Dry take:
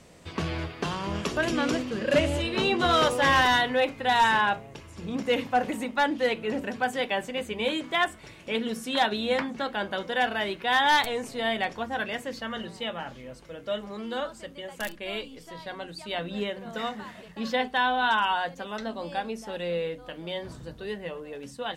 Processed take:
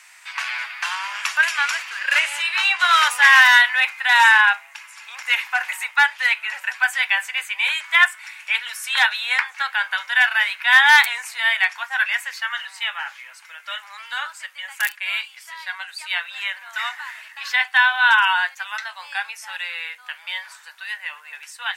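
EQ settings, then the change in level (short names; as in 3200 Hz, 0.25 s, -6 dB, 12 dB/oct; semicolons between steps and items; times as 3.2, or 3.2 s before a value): elliptic high-pass 890 Hz, stop band 70 dB; band shelf 1900 Hz +8.5 dB 1.1 oct; high shelf 6000 Hz +9.5 dB; +5.0 dB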